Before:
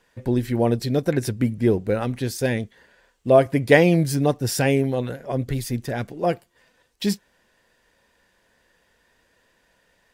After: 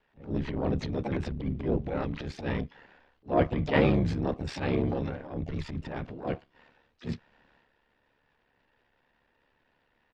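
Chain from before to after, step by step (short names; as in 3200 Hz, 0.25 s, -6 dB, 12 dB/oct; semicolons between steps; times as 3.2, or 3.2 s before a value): ring modulator 35 Hz; LPF 3500 Hz 24 dB/oct; harmoniser -12 st -5 dB, -5 st -15 dB, +7 st -11 dB; transient shaper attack -12 dB, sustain +7 dB; gain -5.5 dB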